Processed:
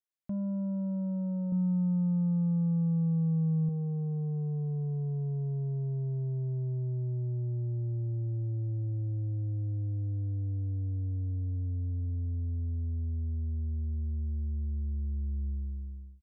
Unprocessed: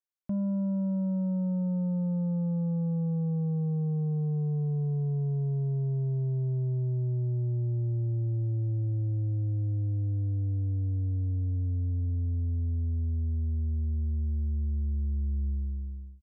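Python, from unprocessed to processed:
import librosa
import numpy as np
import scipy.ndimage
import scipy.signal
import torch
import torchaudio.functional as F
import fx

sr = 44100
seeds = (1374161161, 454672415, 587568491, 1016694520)

y = fx.comb(x, sr, ms=0.8, depth=0.87, at=(1.52, 3.69))
y = y * 10.0 ** (-3.5 / 20.0)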